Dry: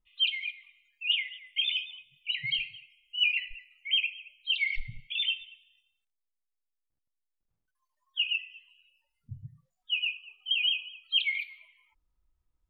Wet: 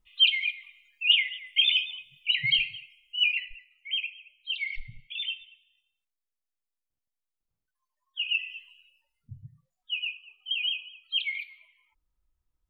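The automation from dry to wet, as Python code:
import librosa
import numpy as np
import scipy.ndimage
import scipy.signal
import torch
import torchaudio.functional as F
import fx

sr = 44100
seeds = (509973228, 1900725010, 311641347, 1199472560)

y = fx.gain(x, sr, db=fx.line((2.76, 6.5), (3.73, -3.5), (8.19, -3.5), (8.48, 9.0), (9.32, -2.0)))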